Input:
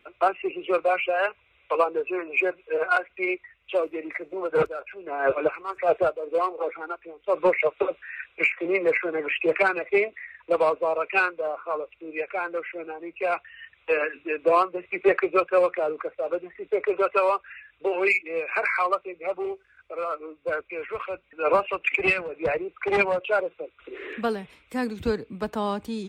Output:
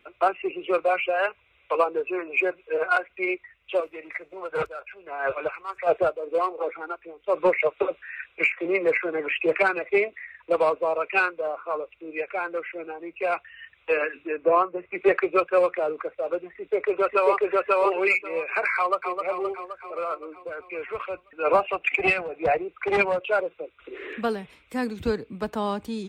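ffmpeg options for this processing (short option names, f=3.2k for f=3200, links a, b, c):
-filter_complex "[0:a]asettb=1/sr,asplit=3[a][b][c];[a]atrim=end=3.804[d];[b]atrim=start=3.8:end=5.87,asetpts=PTS-STARTPTS,afade=t=in:d=0.004:c=qsin,afade=t=out:st=2.066:d=0.004:c=qsin,equalizer=f=280:w=0.77:g=-11[e];[c]atrim=start=5.866[f];[d][e]acrossfade=d=0.004:c1=hsin:c2=qsin[g];[g][f]acrossfade=d=0.004:c1=qsin:c2=hsin,asettb=1/sr,asplit=3[h][i][j];[h]atrim=end=14.274[k];[i]atrim=start=14.27:end=14.95,asetpts=PTS-STARTPTS,afade=t=in:d=0.004:c=qsin,afade=t=out:st=0.676:d=0.004:c=qsin,lowpass=1.9k[l];[j]atrim=start=14.946[m];[k][l]acrossfade=d=0.004:c1=hsin:c2=qsin[n];[n][m]acrossfade=d=0.004:c1=qsin:c2=hsin,asplit=2[o][p];[p]afade=t=in:st=16.44:d=0.01,afade=t=out:st=17.35:d=0.01,aecho=0:1:540|1080|1620:1|0.15|0.0225[q];[o][q]amix=inputs=2:normalize=0,asplit=2[r][s];[s]afade=t=in:st=18.76:d=0.01,afade=t=out:st=19.17:d=0.01,aecho=0:1:260|520|780|1040|1300|1560|1820|2080|2340|2600:0.501187|0.325772|0.211752|0.137639|0.0894651|0.0581523|0.037799|0.0245693|0.0159701|0.0103805[t];[r][t]amix=inputs=2:normalize=0,asettb=1/sr,asplit=3[u][v][w];[u]atrim=end=20.144[x];[v]atrim=start=20.14:end=20.69,asetpts=PTS-STARTPTS,afade=t=in:d=0.004:c=qsin,afade=t=out:st=0.546:d=0.004:c=qsin,acompressor=threshold=-31dB:ratio=6:attack=3.2:release=140:knee=1:detection=peak[y];[w]atrim=start=20.686[z];[x][y]acrossfade=d=0.004:c1=hsin:c2=qsin[aa];[aa][z]acrossfade=d=0.004:c1=qsin:c2=hsin,asettb=1/sr,asplit=3[ab][ac][ad];[ab]atrim=end=21.554[ae];[ac]atrim=start=21.55:end=22.63,asetpts=PTS-STARTPTS,afade=t=in:d=0.004:c=qsin,afade=t=out:st=1.076:d=0.004:c=qsin,equalizer=f=730:t=o:w=0.21:g=11.5[af];[ad]atrim=start=22.626[ag];[ae][af]acrossfade=d=0.004:c1=hsin:c2=qsin[ah];[ah][ag]acrossfade=d=0.004:c1=qsin:c2=hsin"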